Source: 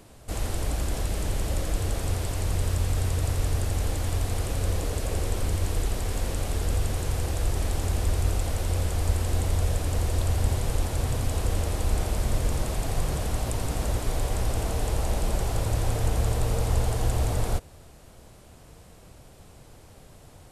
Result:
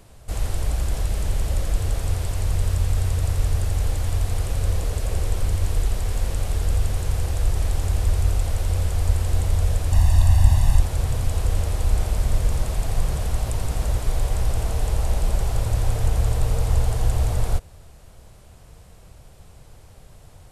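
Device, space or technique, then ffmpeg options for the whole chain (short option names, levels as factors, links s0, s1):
low shelf boost with a cut just above: -filter_complex "[0:a]lowshelf=f=100:g=7,equalizer=f=280:t=o:w=0.88:g=-5.5,asettb=1/sr,asplit=3[s0][s1][s2];[s0]atrim=end=9.924[s3];[s1]atrim=start=9.92:end=10.8,asetpts=PTS-STARTPTS,afade=t=in:d=0.004:c=qsin,afade=t=out:st=0.876:d=0.004:c=qsin,aecho=1:1:1.1:0.9,atrim=end_sample=38808[s4];[s2]atrim=start=10.796[s5];[s3][s4]acrossfade=d=0.004:c1=hsin:c2=qsin[s6];[s6][s5]acrossfade=d=0.004:c1=qsin:c2=hsin"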